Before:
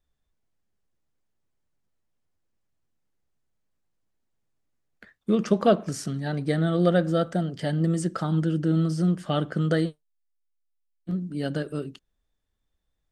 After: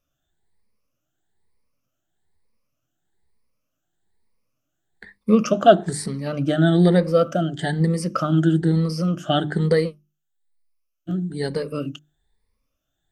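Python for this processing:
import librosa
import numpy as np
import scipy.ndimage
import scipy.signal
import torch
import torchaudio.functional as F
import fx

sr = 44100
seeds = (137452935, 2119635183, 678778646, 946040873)

y = fx.spec_ripple(x, sr, per_octave=0.9, drift_hz=1.1, depth_db=16)
y = fx.hum_notches(y, sr, base_hz=50, count=7)
y = y * 10.0 ** (3.0 / 20.0)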